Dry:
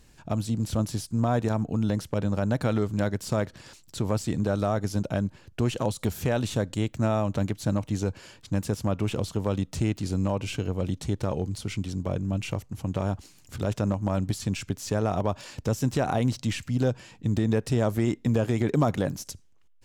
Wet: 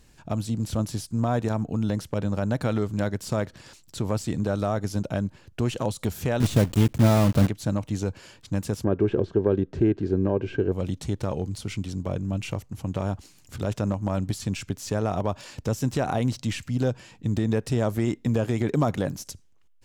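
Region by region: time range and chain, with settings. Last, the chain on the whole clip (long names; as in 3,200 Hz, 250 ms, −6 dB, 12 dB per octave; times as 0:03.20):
0:06.40–0:07.48: one scale factor per block 3 bits + low-shelf EQ 420 Hz +9 dB
0:08.84–0:10.72: head-to-tape spacing loss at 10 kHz 31 dB + hollow resonant body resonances 380/1,600 Hz, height 16 dB, ringing for 35 ms
whole clip: no processing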